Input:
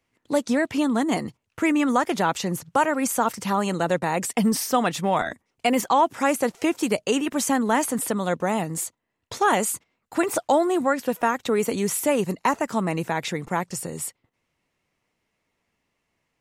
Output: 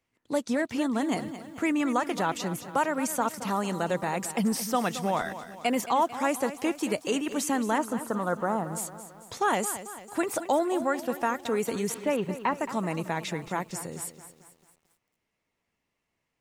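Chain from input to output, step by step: 7.78–8.73 s: resonant high shelf 1.8 kHz -9.5 dB, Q 3; 11.94–12.58 s: low-pass 3.7 kHz 24 dB/octave; bit-crushed delay 222 ms, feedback 55%, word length 8-bit, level -12.5 dB; trim -5.5 dB

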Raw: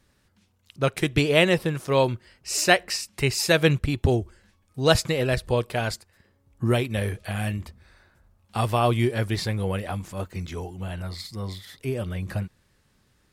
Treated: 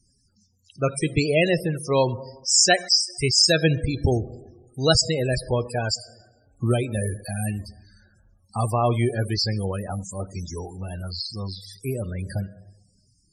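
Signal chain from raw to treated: high-order bell 7.5 kHz +14 dB; plate-style reverb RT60 1.3 s, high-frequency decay 0.65×, DRR 13 dB; loudest bins only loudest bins 32

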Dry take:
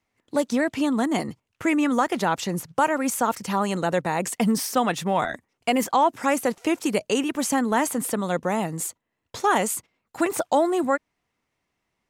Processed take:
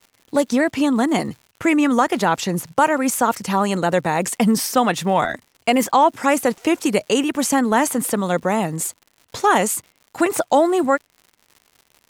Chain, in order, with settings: wow and flutter 24 cents; crackle 150 per s -42 dBFS; trim +5 dB

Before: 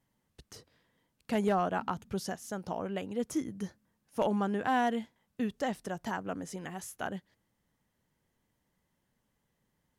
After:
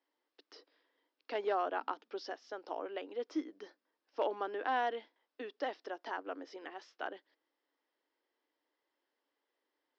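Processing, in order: Chebyshev band-pass 290–5300 Hz, order 5; trim -3 dB

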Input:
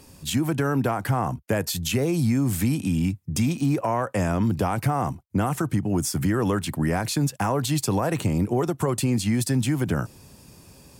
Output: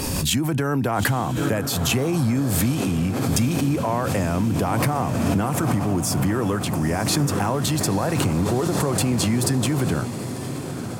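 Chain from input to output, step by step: on a send: echo that smears into a reverb 915 ms, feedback 72%, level -10 dB; on the sum: swell ahead of each attack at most 21 dB/s

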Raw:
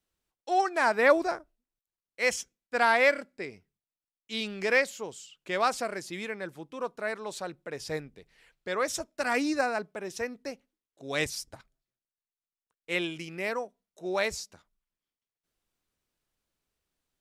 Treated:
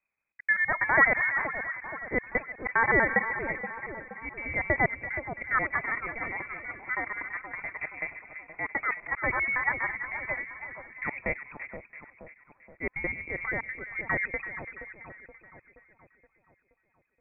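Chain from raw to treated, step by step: slices played last to first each 81 ms, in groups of 2; two-band feedback delay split 1.2 kHz, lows 335 ms, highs 474 ms, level -9 dB; frequency inversion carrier 2.5 kHz

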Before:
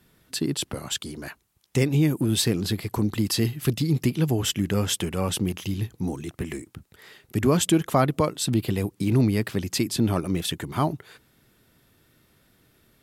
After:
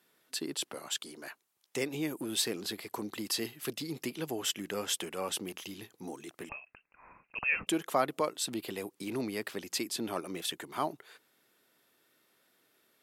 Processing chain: high-pass 390 Hz 12 dB/octave; 6.49–7.67 s: frequency inversion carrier 2.9 kHz; trim -6 dB

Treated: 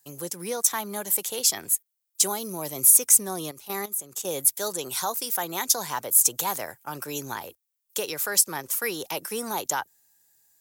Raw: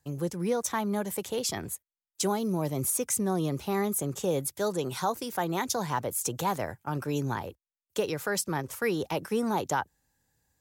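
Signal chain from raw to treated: 3.51–4.25 s: level held to a coarse grid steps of 14 dB; RIAA curve recording

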